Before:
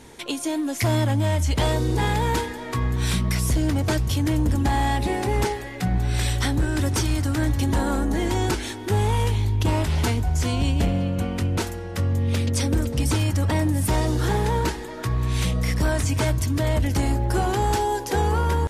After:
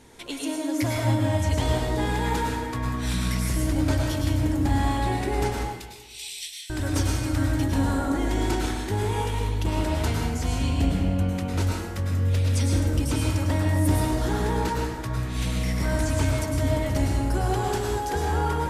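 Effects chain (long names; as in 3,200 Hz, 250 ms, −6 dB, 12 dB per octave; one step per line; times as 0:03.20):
0:05.52–0:06.70: Butterworth high-pass 2,400 Hz 48 dB per octave
dense smooth reverb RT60 1.2 s, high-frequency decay 0.6×, pre-delay 90 ms, DRR −1.5 dB
level −6 dB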